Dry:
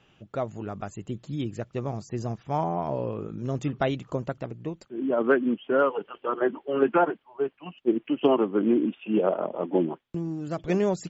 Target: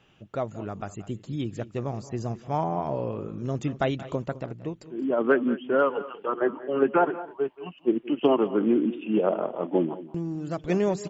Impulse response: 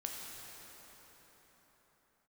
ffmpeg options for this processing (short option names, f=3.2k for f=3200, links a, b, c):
-filter_complex "[0:a]asettb=1/sr,asplit=3[a][b][c];[a]atrim=end=6.264[d];[b]atrim=start=6.26:end=7.03,asetpts=PTS-STARTPTS,afade=t=in:d=0.004:c=qsin,afade=t=out:st=0.766:d=0.004:c=qsin,lowpass=2.9k[e];[c]atrim=start=7.026[f];[d][e]acrossfade=d=0.004:c1=hsin:c2=qsin[g];[g][f]acrossfade=d=0.004:c1=qsin:c2=hsin,aecho=1:1:178|209:0.112|0.133"